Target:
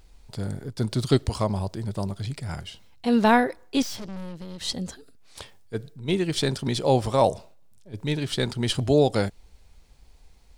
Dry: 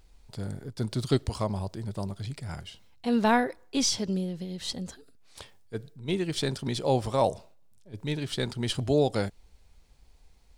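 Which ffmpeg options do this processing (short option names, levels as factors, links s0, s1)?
-filter_complex "[0:a]asettb=1/sr,asplit=3[s0][s1][s2];[s0]atrim=end=3.824[s3];[s1]atrim=start=3.82:end=4.61,asetpts=PTS-STARTPTS,afade=t=in:d=0.004:c=qsin,afade=t=out:st=0.786:d=0.004:c=qsin,aeval=exprs='(tanh(89.1*val(0)+0.75)-tanh(0.75))/89.1':c=same[s4];[s2]atrim=start=4.606[s5];[s3][s4]acrossfade=d=0.004:c1=hsin:c2=qsin[s6];[s6][s5]acrossfade=d=0.004:c1=qsin:c2=hsin,volume=1.68"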